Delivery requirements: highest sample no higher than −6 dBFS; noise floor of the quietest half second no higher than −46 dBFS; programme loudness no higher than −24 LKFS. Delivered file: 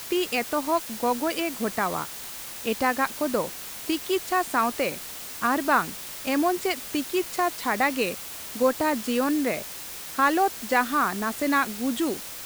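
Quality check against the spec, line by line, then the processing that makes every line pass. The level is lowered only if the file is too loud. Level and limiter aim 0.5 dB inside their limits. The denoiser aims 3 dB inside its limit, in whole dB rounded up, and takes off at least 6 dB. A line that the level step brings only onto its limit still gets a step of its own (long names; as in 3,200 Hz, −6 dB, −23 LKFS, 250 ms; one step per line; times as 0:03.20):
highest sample −7.5 dBFS: in spec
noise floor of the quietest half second −38 dBFS: out of spec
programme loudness −26.0 LKFS: in spec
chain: broadband denoise 11 dB, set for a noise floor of −38 dBFS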